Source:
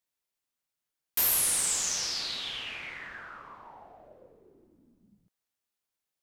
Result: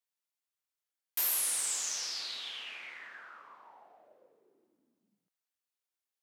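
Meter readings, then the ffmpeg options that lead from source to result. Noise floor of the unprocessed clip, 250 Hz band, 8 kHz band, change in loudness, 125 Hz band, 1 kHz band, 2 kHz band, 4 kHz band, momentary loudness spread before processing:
under -85 dBFS, -13.5 dB, -5.0 dB, -5.0 dB, under -20 dB, -6.5 dB, -5.5 dB, -5.0 dB, 20 LU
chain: -af "highpass=210,lowshelf=f=350:g=-11,volume=0.562"

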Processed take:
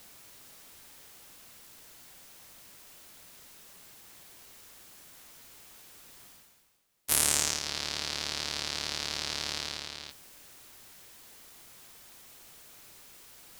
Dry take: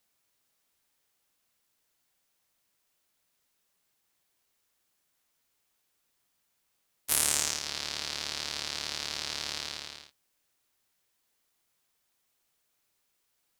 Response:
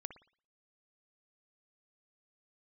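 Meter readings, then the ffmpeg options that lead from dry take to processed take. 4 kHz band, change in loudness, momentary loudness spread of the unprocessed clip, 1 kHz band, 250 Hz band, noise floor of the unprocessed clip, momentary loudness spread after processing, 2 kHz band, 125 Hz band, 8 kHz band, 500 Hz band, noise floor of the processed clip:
+1.0 dB, +0.5 dB, 14 LU, +1.5 dB, +3.5 dB, -77 dBFS, 20 LU, +1.5 dB, +4.5 dB, +1.0 dB, +2.5 dB, -56 dBFS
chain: -af "lowshelf=f=450:g=3.5,areverse,acompressor=mode=upward:threshold=0.0178:ratio=2.5,areverse,volume=1.12"

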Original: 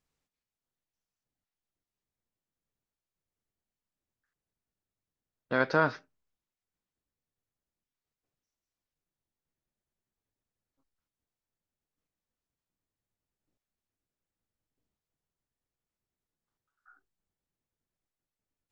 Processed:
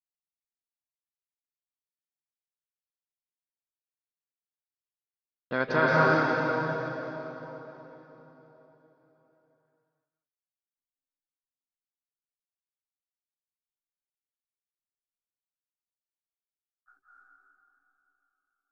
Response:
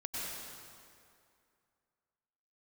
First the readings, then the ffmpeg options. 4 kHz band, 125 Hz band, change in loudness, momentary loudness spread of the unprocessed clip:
+6.0 dB, +8.0 dB, +2.0 dB, 6 LU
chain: -filter_complex "[0:a]agate=range=0.0224:threshold=0.00112:ratio=3:detection=peak[s0];[1:a]atrim=start_sample=2205,asetrate=24696,aresample=44100[s1];[s0][s1]afir=irnorm=-1:irlink=0"

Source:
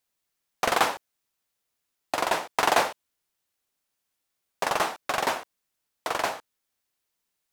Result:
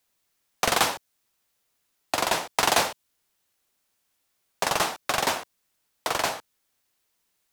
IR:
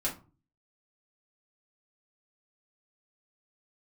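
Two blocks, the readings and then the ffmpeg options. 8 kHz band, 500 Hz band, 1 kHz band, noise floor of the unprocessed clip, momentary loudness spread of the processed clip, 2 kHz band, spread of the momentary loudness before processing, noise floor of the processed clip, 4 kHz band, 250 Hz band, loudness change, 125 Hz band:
+6.5 dB, -0.5 dB, -0.5 dB, -81 dBFS, 10 LU, +1.0 dB, 11 LU, -75 dBFS, +4.5 dB, +1.5 dB, +1.5 dB, +5.5 dB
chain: -filter_complex "[0:a]acrossover=split=200|3000[s0][s1][s2];[s1]acompressor=threshold=0.00891:ratio=1.5[s3];[s0][s3][s2]amix=inputs=3:normalize=0,volume=2.11"

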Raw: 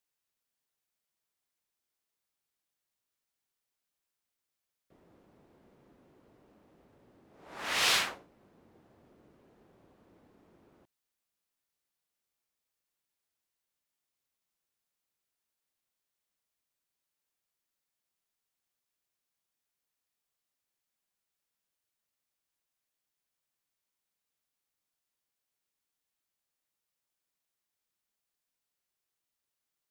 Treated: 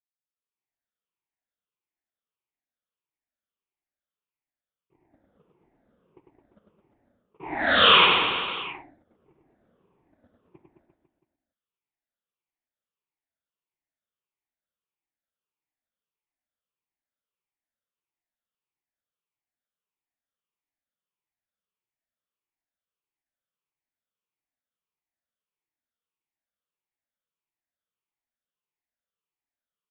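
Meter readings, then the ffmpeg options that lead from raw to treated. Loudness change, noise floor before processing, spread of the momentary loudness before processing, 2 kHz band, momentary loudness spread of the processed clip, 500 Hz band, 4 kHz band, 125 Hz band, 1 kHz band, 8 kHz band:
+10.0 dB, under -85 dBFS, 13 LU, +11.5 dB, 20 LU, +17.0 dB, +12.5 dB, +14.0 dB, +16.0 dB, under -35 dB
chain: -af "afftfilt=real='re*pow(10,21/40*sin(2*PI*(0.73*log(max(b,1)*sr/1024/100)/log(2)-(-1.6)*(pts-256)/sr)))':imag='im*pow(10,21/40*sin(2*PI*(0.73*log(max(b,1)*sr/1024/100)/log(2)-(-1.6)*(pts-256)/sr)))':win_size=1024:overlap=0.75,aemphasis=mode=reproduction:type=50fm,agate=range=0.0158:threshold=0.00251:ratio=16:detection=peak,adynamicequalizer=threshold=0.002:dfrequency=240:dqfactor=1.8:tfrequency=240:tqfactor=1.8:attack=5:release=100:ratio=0.375:range=1.5:mode=boostabove:tftype=bell,aecho=1:1:100|215|347.2|499.3|674.2:0.631|0.398|0.251|0.158|0.1,acontrast=50,apsyclip=3.16,dynaudnorm=f=320:g=3:m=6.31,aresample=8000,aresample=44100,volume=0.447"

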